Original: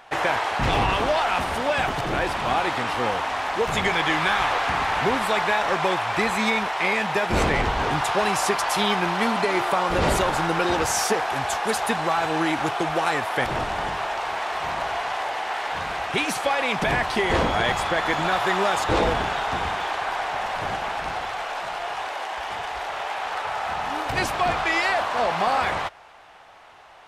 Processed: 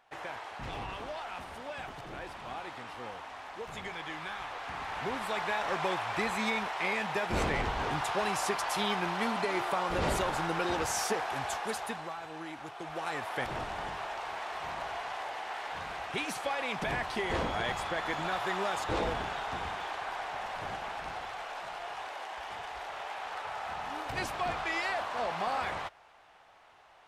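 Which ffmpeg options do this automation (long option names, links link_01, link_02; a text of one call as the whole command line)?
ffmpeg -i in.wav -af "volume=-0.5dB,afade=type=in:start_time=4.52:duration=1.29:silence=0.354813,afade=type=out:start_time=11.49:duration=0.69:silence=0.316228,afade=type=in:start_time=12.74:duration=0.54:silence=0.375837" out.wav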